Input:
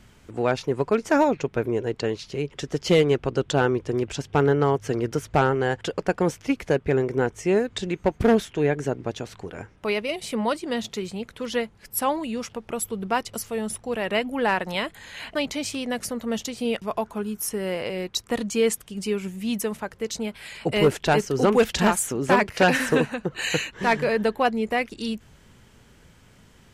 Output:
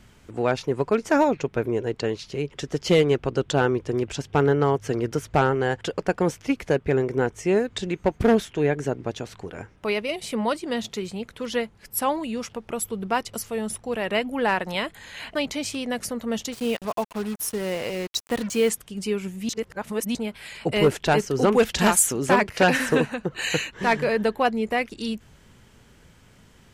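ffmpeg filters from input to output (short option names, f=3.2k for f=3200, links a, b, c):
-filter_complex "[0:a]asettb=1/sr,asplit=3[a][b][c];[a]atrim=end=16.524[d];[b]atrim=start=16.52:end=18.7,asetpts=PTS-STARTPTS,afade=t=in:d=0.004:c=qsin,afade=t=out:st=2.176:d=0.004:c=qsin,acrusher=bits=5:mix=0:aa=0.5[e];[c]atrim=start=18.696[f];[d][e]acrossfade=d=0.004:c1=hsin:c2=qsin[g];[g][f]acrossfade=d=0.004:c1=qsin:c2=hsin,asettb=1/sr,asplit=3[h][i][j];[h]atrim=end=21.804[k];[i]atrim=start=21.8:end=22.29,asetpts=PTS-STARTPTS,afade=t=in:d=0.004:c=qsin,afade=t=out:st=0.486:d=0.004:c=qsin,highshelf=f=3.4k:g=8.5[l];[j]atrim=start=22.286[m];[k][l]acrossfade=d=0.004:c1=hsin:c2=qsin[n];[n][m]acrossfade=d=0.004:c1=qsin:c2=hsin,asplit=3[o][p][q];[o]atrim=end=19.492[r];[p]atrim=start=19.488:end=20.152,asetpts=PTS-STARTPTS,areverse[s];[q]atrim=start=20.148[t];[r][s]acrossfade=d=0.004:c1=hsin:c2=hsin[u];[u][t]acrossfade=d=0.004:c1=hsin:c2=hsin"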